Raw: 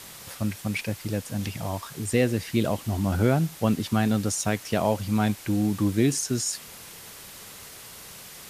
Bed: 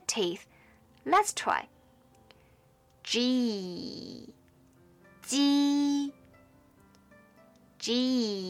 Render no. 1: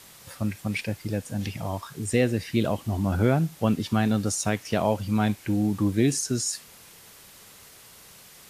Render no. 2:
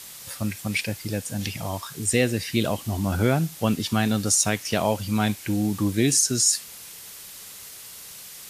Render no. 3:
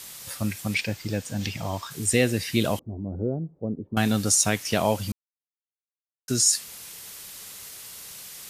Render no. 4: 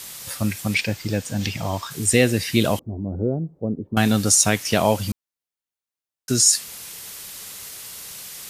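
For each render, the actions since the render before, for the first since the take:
noise reduction from a noise print 6 dB
high-shelf EQ 2,400 Hz +10 dB
0:00.74–0:01.91: parametric band 11,000 Hz −14.5 dB 0.52 octaves; 0:02.79–0:03.97: transistor ladder low-pass 560 Hz, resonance 40%; 0:05.12–0:06.28: silence
level +4.5 dB

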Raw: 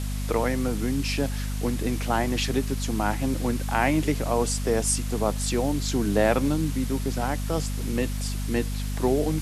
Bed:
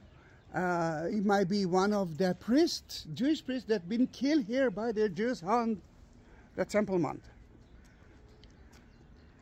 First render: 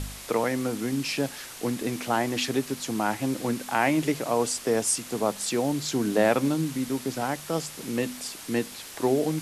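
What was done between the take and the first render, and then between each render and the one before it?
hum removal 50 Hz, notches 5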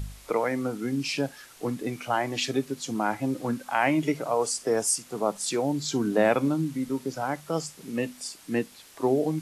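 noise reduction from a noise print 10 dB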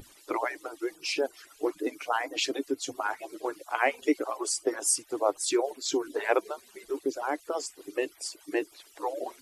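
harmonic-percussive split with one part muted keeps percussive
low shelf with overshoot 250 Hz −8 dB, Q 3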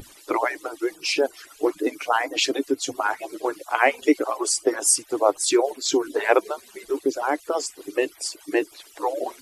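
level +7 dB

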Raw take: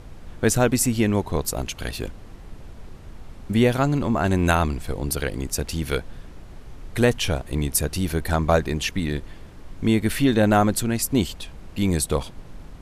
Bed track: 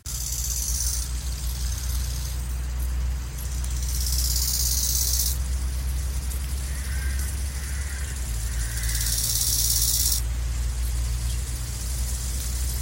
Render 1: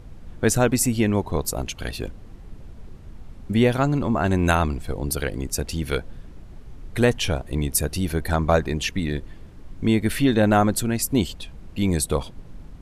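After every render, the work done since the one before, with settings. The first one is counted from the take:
broadband denoise 6 dB, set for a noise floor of −42 dBFS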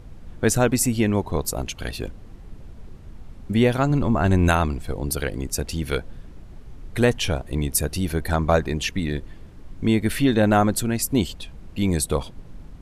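0:03.90–0:04.49: low-shelf EQ 100 Hz +8.5 dB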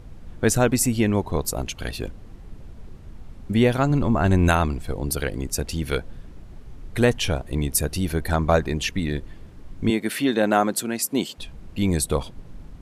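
0:09.90–0:11.38: Bessel high-pass filter 250 Hz, order 4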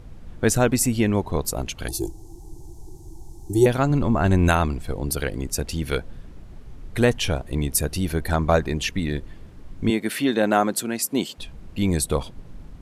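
0:01.88–0:03.66: drawn EQ curve 160 Hz 0 dB, 230 Hz −19 dB, 330 Hz +13 dB, 550 Hz −15 dB, 840 Hz +8 dB, 1,300 Hz −23 dB, 2,500 Hz −21 dB, 6,200 Hz +13 dB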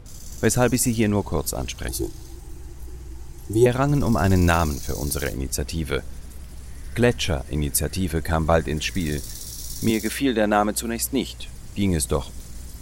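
mix in bed track −13 dB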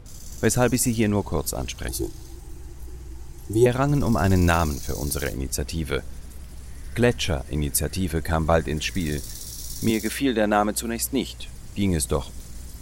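level −1 dB

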